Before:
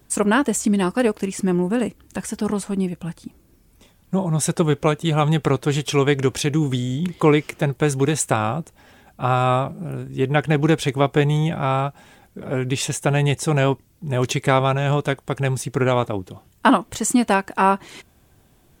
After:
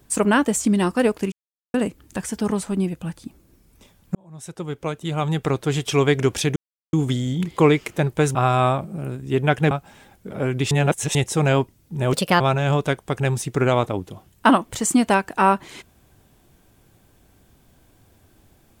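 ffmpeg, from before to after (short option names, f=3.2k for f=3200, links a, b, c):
-filter_complex "[0:a]asplit=11[a][b][c][d][e][f][g][h][i][j][k];[a]atrim=end=1.32,asetpts=PTS-STARTPTS,afade=t=out:st=1.316:d=0.004:c=hsin[l];[b]atrim=start=1.32:end=1.74,asetpts=PTS-STARTPTS,volume=0[m];[c]atrim=start=1.74:end=4.15,asetpts=PTS-STARTPTS,afade=t=in:d=0.004:c=hsin,afade=t=out:st=2.406:d=0.004:c=hsin[n];[d]atrim=start=4.15:end=6.56,asetpts=PTS-STARTPTS,afade=t=in:d=1.9,afade=t=out:st=2.406:d=0.004:c=hsin,apad=pad_dur=0.37[o];[e]atrim=start=6.56:end=7.982,asetpts=PTS-STARTPTS,afade=t=in:d=0.004:c=hsin[p];[f]atrim=start=9.218:end=10.582[q];[g]atrim=start=11.818:end=12.822[r];[h]atrim=start=12.818:end=13.262,asetpts=PTS-STARTPTS,areverse[s];[i]atrim=start=13.258:end=14.244[t];[j]atrim=start=14.24:end=14.6,asetpts=PTS-STARTPTS,asetrate=58212,aresample=44100,atrim=end_sample=12027,asetpts=PTS-STARTPTS[u];[k]atrim=start=14.596[v];[l][m][n][o][p]concat=n=5:v=0:a=1[w];[w][q]acrossfade=d=0.004:c1=hsin:c2=hsin[x];[x][r]acrossfade=d=0.004:c1=hsin:c2=hsin[y];[y][s]acrossfade=d=0.004:c1=hsin:c2=hsin[z];[z][t]acrossfade=d=0.004:c1=hsin:c2=hsin[aa];[aa][u]acrossfade=d=0.004:c1=hsin:c2=hsin[ab];[ab][v]acrossfade=d=0.004:c1=hsin:c2=hsin"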